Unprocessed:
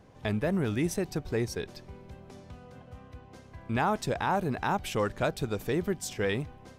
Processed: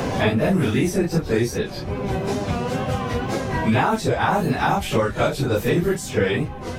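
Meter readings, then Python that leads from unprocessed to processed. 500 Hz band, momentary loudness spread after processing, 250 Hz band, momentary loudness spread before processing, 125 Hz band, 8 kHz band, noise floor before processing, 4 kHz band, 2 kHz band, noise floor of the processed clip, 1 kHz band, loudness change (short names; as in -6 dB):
+10.0 dB, 5 LU, +10.5 dB, 20 LU, +11.0 dB, +7.5 dB, -52 dBFS, +10.5 dB, +10.5 dB, -32 dBFS, +9.5 dB, +9.0 dB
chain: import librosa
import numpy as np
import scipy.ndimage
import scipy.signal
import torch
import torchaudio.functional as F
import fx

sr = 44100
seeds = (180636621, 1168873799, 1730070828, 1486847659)

y = fx.phase_scramble(x, sr, seeds[0], window_ms=100)
y = fx.wow_flutter(y, sr, seeds[1], rate_hz=2.1, depth_cents=63.0)
y = fx.band_squash(y, sr, depth_pct=100)
y = y * librosa.db_to_amplitude(9.0)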